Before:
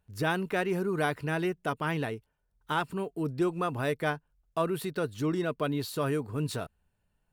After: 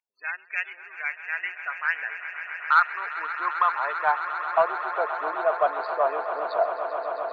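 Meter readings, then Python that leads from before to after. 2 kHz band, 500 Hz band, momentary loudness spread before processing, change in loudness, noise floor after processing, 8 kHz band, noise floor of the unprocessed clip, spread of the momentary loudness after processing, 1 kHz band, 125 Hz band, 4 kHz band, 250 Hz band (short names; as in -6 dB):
+9.0 dB, +3.5 dB, 5 LU, +5.0 dB, -49 dBFS, under -20 dB, -77 dBFS, 10 LU, +10.5 dB, under -30 dB, -4.5 dB, under -15 dB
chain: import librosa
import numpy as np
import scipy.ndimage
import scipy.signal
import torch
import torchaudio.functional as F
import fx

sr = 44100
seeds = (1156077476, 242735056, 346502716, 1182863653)

p1 = fx.wiener(x, sr, points=25)
p2 = scipy.signal.sosfilt(scipy.signal.butter(2, 560.0, 'highpass', fs=sr, output='sos'), p1)
p3 = fx.high_shelf(p2, sr, hz=7600.0, db=-7.0)
p4 = fx.rider(p3, sr, range_db=10, speed_s=0.5)
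p5 = p3 + (p4 * librosa.db_to_amplitude(-2.0))
p6 = fx.spec_topn(p5, sr, count=32)
p7 = fx.filter_sweep_highpass(p6, sr, from_hz=2200.0, to_hz=710.0, start_s=1.09, end_s=4.84, q=5.4)
p8 = 10.0 ** (-7.0 / 20.0) * np.tanh(p7 / 10.0 ** (-7.0 / 20.0))
y = p8 + fx.echo_swell(p8, sr, ms=132, loudest=8, wet_db=-14.0, dry=0)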